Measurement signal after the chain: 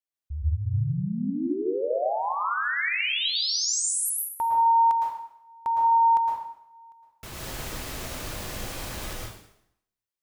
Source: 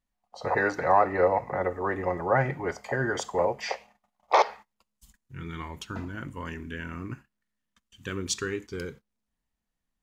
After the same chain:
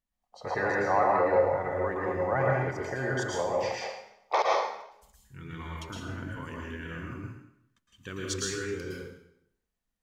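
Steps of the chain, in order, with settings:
dense smooth reverb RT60 0.73 s, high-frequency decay 0.95×, pre-delay 100 ms, DRR −2.5 dB
level −6 dB

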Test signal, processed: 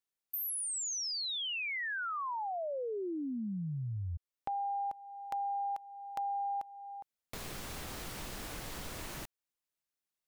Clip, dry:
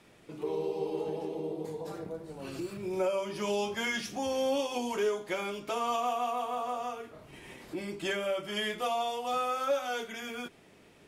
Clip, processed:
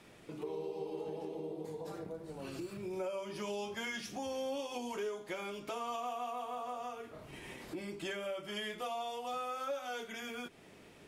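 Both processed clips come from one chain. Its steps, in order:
downward compressor 2 to 1, threshold −45 dBFS
level +1 dB

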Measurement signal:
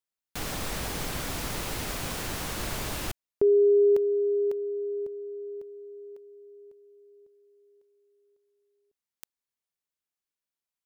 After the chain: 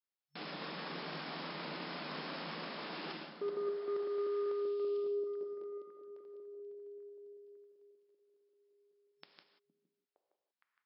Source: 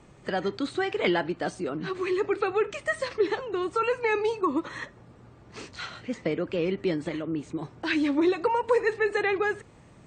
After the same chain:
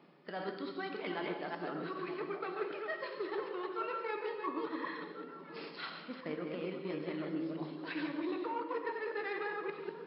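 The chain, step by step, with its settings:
delay that plays each chunk backwards 194 ms, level −3.5 dB
harmonic generator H 3 −22 dB, 7 −30 dB, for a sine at −10 dBFS
dynamic equaliser 1,100 Hz, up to +6 dB, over −45 dBFS, Q 1.8
reversed playback
downward compressor 4 to 1, threshold −38 dBFS
reversed playback
brick-wall band-pass 140–5,400 Hz
on a send: echo through a band-pass that steps 463 ms, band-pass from 210 Hz, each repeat 1.4 octaves, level −6 dB
on the sum: reverb whose tail is shaped and stops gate 210 ms flat, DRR 5 dB
level −1 dB

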